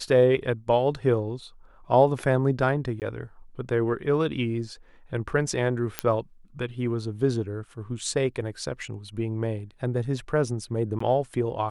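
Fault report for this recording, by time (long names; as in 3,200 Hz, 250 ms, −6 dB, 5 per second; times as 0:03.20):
0:03.00–0:03.02: drop-out 18 ms
0:05.99: click −8 dBFS
0:10.99–0:11.00: drop-out 14 ms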